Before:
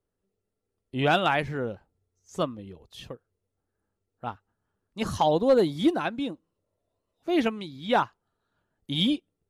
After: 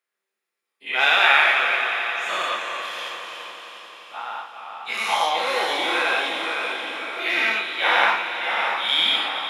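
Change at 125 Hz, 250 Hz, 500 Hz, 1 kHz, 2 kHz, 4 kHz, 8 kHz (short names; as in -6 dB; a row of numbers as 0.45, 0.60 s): under -20 dB, -12.5 dB, -2.5 dB, +7.0 dB, +16.0 dB, +12.0 dB, +9.5 dB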